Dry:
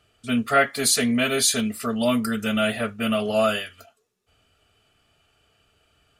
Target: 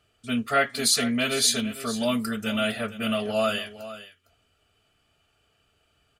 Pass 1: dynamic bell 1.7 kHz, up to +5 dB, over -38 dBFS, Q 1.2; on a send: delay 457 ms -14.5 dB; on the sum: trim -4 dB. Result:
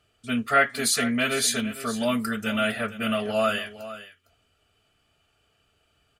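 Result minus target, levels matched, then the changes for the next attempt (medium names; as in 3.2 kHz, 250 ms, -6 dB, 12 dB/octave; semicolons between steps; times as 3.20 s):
2 kHz band +3.0 dB
change: dynamic bell 4.3 kHz, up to +5 dB, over -38 dBFS, Q 1.2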